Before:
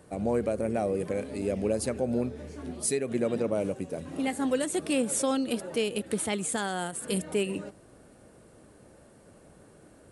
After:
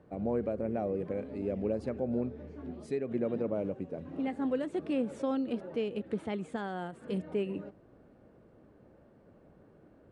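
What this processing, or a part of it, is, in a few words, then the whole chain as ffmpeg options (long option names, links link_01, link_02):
phone in a pocket: -af "lowpass=3600,equalizer=frequency=260:width_type=o:width=1.8:gain=2,highshelf=frequency=2100:gain=-10,volume=-5dB"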